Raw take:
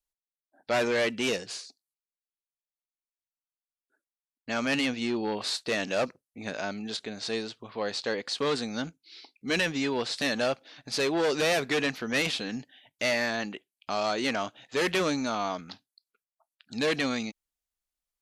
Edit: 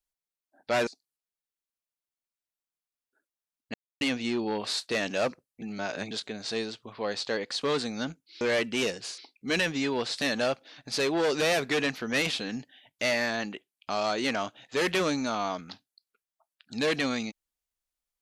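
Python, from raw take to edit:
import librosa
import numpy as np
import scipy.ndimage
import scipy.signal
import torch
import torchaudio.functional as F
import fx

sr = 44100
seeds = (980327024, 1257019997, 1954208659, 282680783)

y = fx.edit(x, sr, fx.move(start_s=0.87, length_s=0.77, to_s=9.18),
    fx.silence(start_s=4.51, length_s=0.27),
    fx.reverse_span(start_s=6.39, length_s=0.49), tone=tone)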